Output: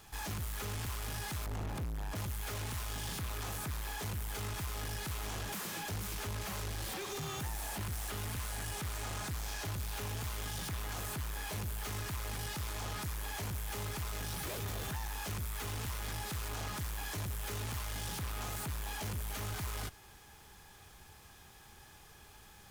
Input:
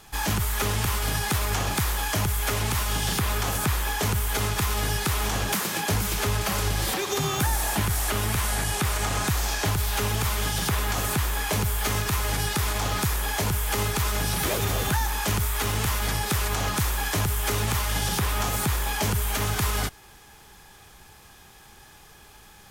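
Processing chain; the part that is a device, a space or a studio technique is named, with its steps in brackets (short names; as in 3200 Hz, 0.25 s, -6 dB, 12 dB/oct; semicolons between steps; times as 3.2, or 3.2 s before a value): 1.46–2.16 tilt shelf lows +8.5 dB, about 890 Hz; open-reel tape (soft clip -31 dBFS, distortion -7 dB; bell 84 Hz +4 dB 1.03 oct; white noise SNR 33 dB); gain -7 dB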